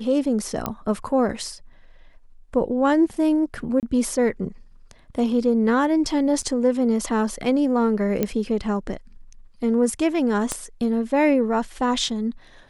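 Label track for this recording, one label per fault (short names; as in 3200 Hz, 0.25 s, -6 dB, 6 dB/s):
0.660000	0.660000	pop -11 dBFS
3.800000	3.830000	gap 28 ms
6.420000	6.430000	gap 6.4 ms
8.230000	8.230000	pop -9 dBFS
10.520000	10.520000	pop -11 dBFS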